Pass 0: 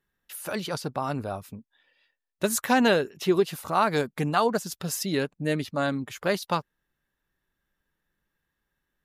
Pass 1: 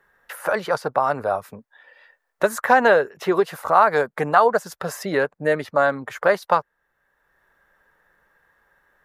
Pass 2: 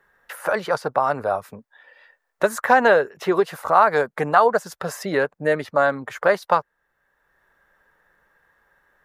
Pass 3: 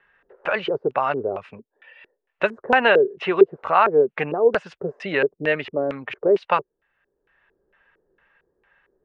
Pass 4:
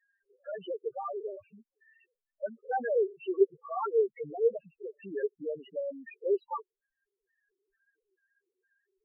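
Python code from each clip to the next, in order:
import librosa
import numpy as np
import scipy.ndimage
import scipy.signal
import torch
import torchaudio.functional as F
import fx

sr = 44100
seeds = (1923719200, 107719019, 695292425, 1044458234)

y1 = fx.band_shelf(x, sr, hz=930.0, db=14.0, octaves=2.5)
y1 = fx.band_squash(y1, sr, depth_pct=40)
y1 = F.gain(torch.from_numpy(y1), -4.0).numpy()
y2 = fx.peak_eq(y1, sr, hz=12000.0, db=-3.0, octaves=0.26)
y3 = fx.filter_lfo_lowpass(y2, sr, shape='square', hz=2.2, low_hz=390.0, high_hz=2700.0, q=5.7)
y3 = scipy.signal.sosfilt(scipy.signal.ellip(4, 1.0, 40, 9800.0, 'lowpass', fs=sr, output='sos'), y3)
y3 = F.gain(torch.from_numpy(y3), -2.0).numpy()
y4 = fx.spec_topn(y3, sr, count=2)
y4 = F.gain(torch.from_numpy(y4), -8.0).numpy()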